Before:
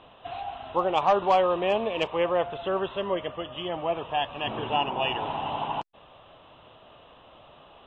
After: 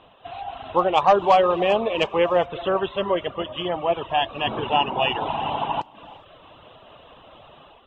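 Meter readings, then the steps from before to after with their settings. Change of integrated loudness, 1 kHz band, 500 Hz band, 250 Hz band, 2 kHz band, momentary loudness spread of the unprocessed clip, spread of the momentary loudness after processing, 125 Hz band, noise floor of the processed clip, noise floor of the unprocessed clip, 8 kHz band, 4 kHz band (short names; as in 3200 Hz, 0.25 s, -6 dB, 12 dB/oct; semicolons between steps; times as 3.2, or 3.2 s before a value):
+5.5 dB, +5.0 dB, +5.0 dB, +5.0 dB, +5.5 dB, 12 LU, 12 LU, +4.5 dB, -51 dBFS, -53 dBFS, n/a, +5.0 dB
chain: non-linear reverb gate 0.44 s flat, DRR 11.5 dB; AGC gain up to 6 dB; reverb removal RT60 0.62 s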